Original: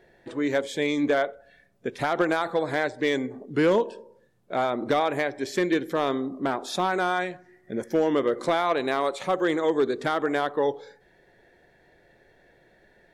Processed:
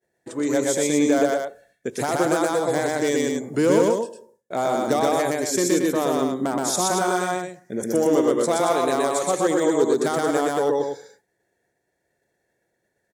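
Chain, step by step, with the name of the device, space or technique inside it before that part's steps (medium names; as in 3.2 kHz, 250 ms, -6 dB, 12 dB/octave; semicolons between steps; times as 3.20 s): expander -46 dBFS; budget condenser microphone (high-pass 75 Hz; resonant high shelf 5.1 kHz +12 dB, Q 1.5); dynamic bell 1.8 kHz, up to -5 dB, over -38 dBFS, Q 0.94; loudspeakers at several distances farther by 42 m -1 dB, 78 m -6 dB; trim +2 dB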